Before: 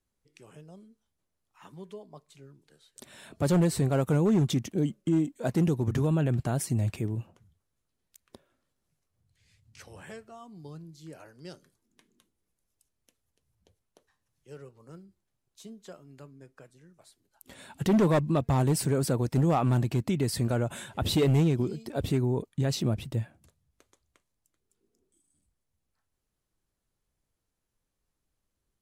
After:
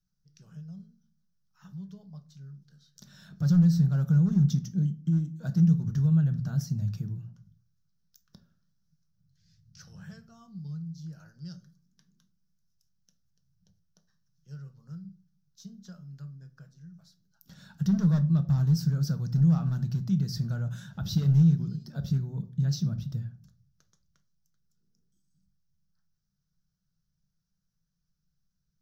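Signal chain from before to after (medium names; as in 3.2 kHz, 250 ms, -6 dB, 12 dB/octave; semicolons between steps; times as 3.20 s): FFT filter 110 Hz 0 dB, 170 Hz +12 dB, 300 Hz -16 dB, 650 Hz -13 dB, 1 kHz -13 dB, 1.5 kHz -1 dB, 2.2 kHz -18 dB, 5.7 kHz +6 dB, 9 kHz -23 dB, 14 kHz 0 dB; in parallel at 0 dB: compression, threshold -41 dBFS, peak gain reduction 27.5 dB; on the sum: simulated room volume 300 m³, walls furnished, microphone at 0.61 m; trim -6.5 dB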